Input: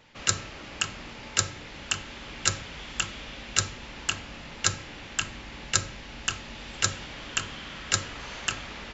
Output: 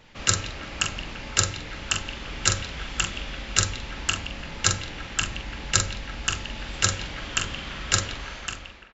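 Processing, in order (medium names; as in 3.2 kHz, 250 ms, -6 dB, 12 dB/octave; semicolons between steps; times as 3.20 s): fade out at the end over 0.94 s; bass shelf 80 Hz +9.5 dB; doubling 44 ms -7 dB; repeats whose band climbs or falls 170 ms, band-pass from 2.9 kHz, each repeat -0.7 oct, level -10 dB; trim +2.5 dB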